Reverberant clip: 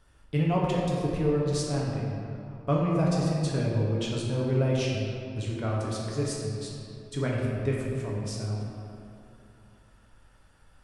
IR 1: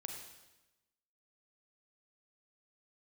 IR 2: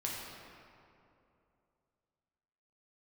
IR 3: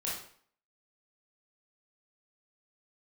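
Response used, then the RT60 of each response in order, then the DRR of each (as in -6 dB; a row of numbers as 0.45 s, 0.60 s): 2; 1.0 s, 2.7 s, 0.55 s; 2.0 dB, -4.0 dB, -6.5 dB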